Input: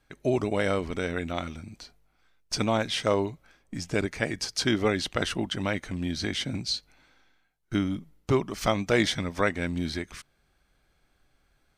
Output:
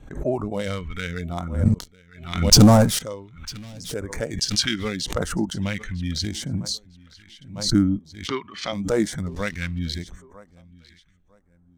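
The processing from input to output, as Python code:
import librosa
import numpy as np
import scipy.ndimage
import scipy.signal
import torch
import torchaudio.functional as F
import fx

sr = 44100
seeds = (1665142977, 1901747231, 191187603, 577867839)

y = fx.wiener(x, sr, points=9)
y = fx.peak_eq(y, sr, hz=1100.0, db=4.5, octaves=0.84)
y = fx.leveller(y, sr, passes=5, at=(1.65, 2.99))
y = fx.bandpass_edges(y, sr, low_hz=250.0, high_hz=3900.0, at=(7.98, 8.73))
y = fx.rider(y, sr, range_db=4, speed_s=0.5)
y = fx.noise_reduce_blind(y, sr, reduce_db=10)
y = fx.echo_feedback(y, sr, ms=951, feedback_pct=30, wet_db=-23.5)
y = fx.backlash(y, sr, play_db=-42.0, at=(9.26, 9.79))
y = fx.phaser_stages(y, sr, stages=2, low_hz=580.0, high_hz=2600.0, hz=0.8, feedback_pct=45)
y = fx.pre_swell(y, sr, db_per_s=94.0)
y = F.gain(torch.from_numpy(y), 3.0).numpy()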